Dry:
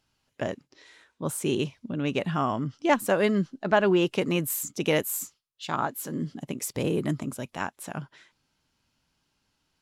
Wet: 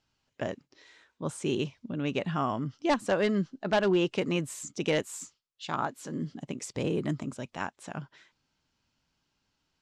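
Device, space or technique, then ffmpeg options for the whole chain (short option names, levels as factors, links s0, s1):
synthesiser wavefolder: -af "aeval=exprs='0.188*(abs(mod(val(0)/0.188+3,4)-2)-1)':c=same,lowpass=f=7700:w=0.5412,lowpass=f=7700:w=1.3066,volume=0.708"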